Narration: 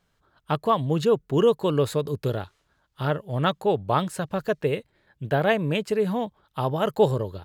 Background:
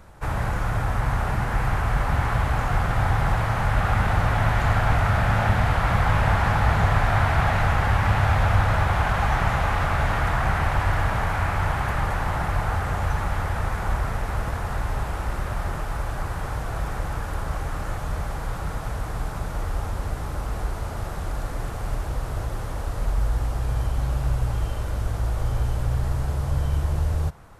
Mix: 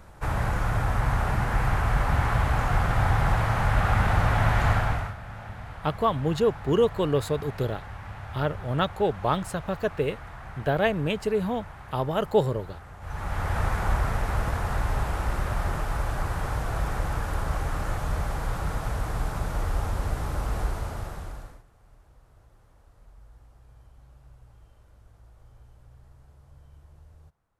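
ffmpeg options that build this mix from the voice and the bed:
-filter_complex "[0:a]adelay=5350,volume=0.794[s0];[1:a]volume=7.94,afade=t=out:st=4.69:d=0.46:silence=0.125893,afade=t=in:st=13:d=0.6:silence=0.112202,afade=t=out:st=20.62:d=1.01:silence=0.0375837[s1];[s0][s1]amix=inputs=2:normalize=0"

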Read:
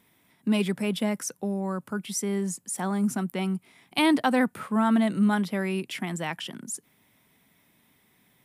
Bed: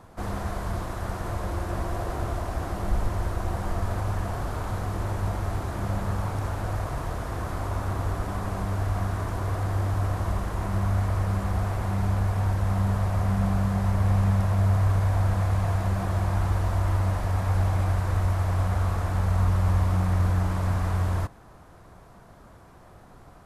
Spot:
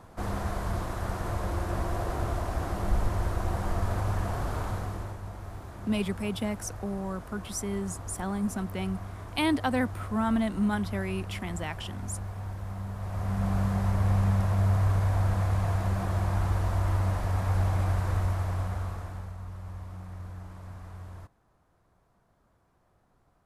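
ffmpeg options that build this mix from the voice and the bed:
-filter_complex "[0:a]adelay=5400,volume=0.596[s0];[1:a]volume=2.66,afade=t=out:st=4.6:d=0.59:silence=0.281838,afade=t=in:st=12.96:d=0.64:silence=0.334965,afade=t=out:st=18.09:d=1.27:silence=0.16788[s1];[s0][s1]amix=inputs=2:normalize=0"

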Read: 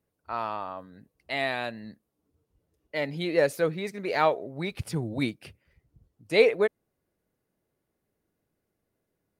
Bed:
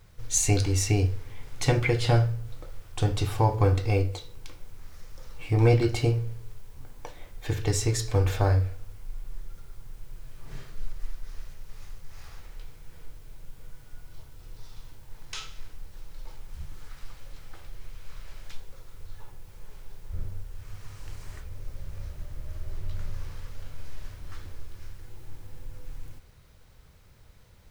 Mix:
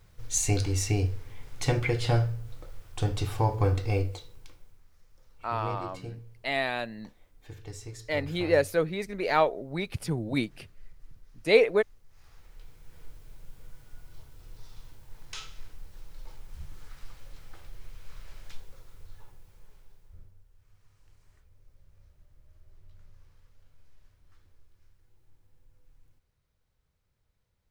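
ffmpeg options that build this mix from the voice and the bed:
-filter_complex "[0:a]adelay=5150,volume=1[s0];[1:a]volume=3.35,afade=t=out:st=4.03:d=0.82:silence=0.211349,afade=t=in:st=12.08:d=1:silence=0.211349,afade=t=out:st=18.6:d=1.72:silence=0.125893[s1];[s0][s1]amix=inputs=2:normalize=0"

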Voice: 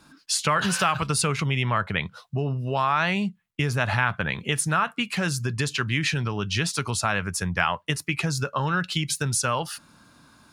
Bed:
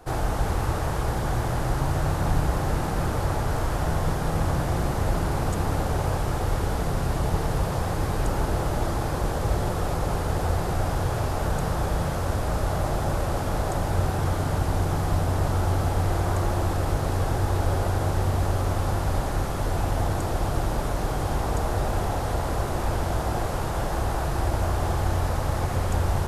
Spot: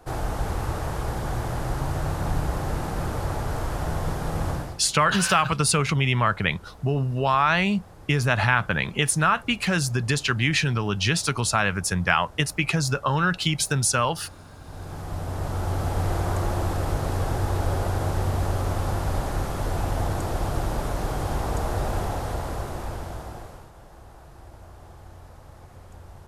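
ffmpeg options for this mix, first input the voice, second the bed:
-filter_complex "[0:a]adelay=4500,volume=1.33[s0];[1:a]volume=7.5,afade=t=out:st=4.5:d=0.3:silence=0.11885,afade=t=in:st=14.59:d=1.47:silence=0.1,afade=t=out:st=21.95:d=1.76:silence=0.1[s1];[s0][s1]amix=inputs=2:normalize=0"

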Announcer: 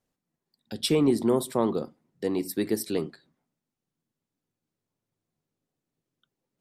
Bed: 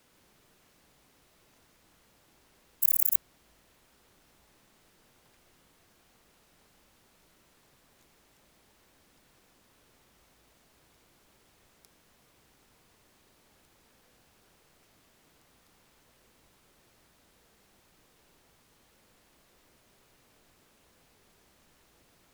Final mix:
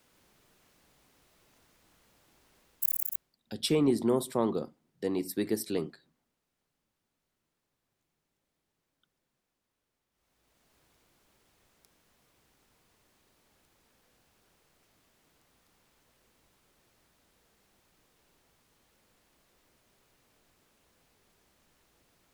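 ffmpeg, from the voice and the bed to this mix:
-filter_complex "[0:a]adelay=2800,volume=0.668[s0];[1:a]volume=4.73,afade=t=out:st=2.58:d=0.78:silence=0.125893,afade=t=in:st=10.11:d=0.63:silence=0.177828[s1];[s0][s1]amix=inputs=2:normalize=0"

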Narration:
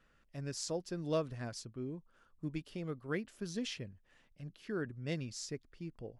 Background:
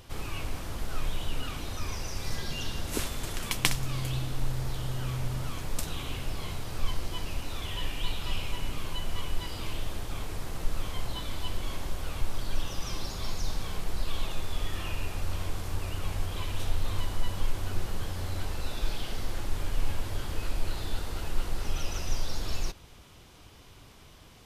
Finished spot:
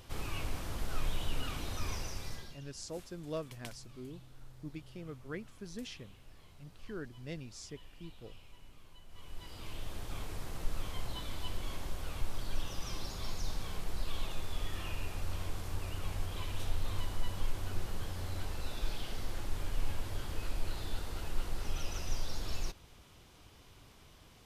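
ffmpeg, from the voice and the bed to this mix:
-filter_complex "[0:a]adelay=2200,volume=0.562[s0];[1:a]volume=5.31,afade=t=out:st=1.93:d=0.66:silence=0.1,afade=t=in:st=9.08:d=1.06:silence=0.133352[s1];[s0][s1]amix=inputs=2:normalize=0"

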